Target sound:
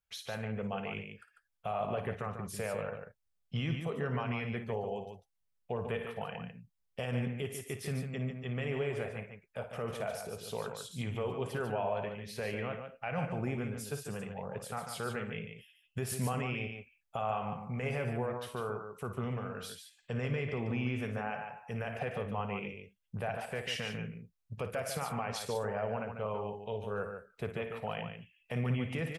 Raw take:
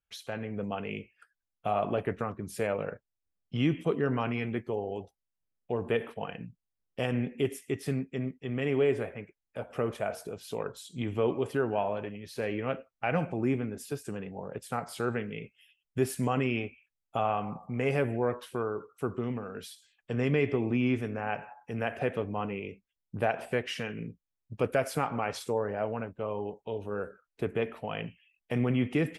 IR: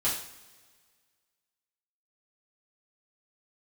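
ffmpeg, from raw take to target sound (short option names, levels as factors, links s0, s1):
-af "equalizer=f=310:w=2.5:g=-14,alimiter=level_in=1.19:limit=0.0631:level=0:latency=1:release=79,volume=0.841,aecho=1:1:55.39|145.8:0.282|0.447"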